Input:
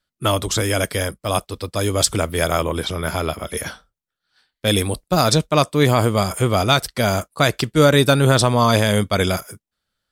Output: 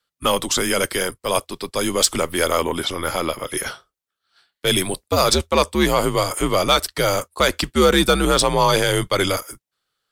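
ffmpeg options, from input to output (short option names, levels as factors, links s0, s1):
-af "highpass=f=360:p=1,acontrast=54,afreqshift=-82,volume=0.668"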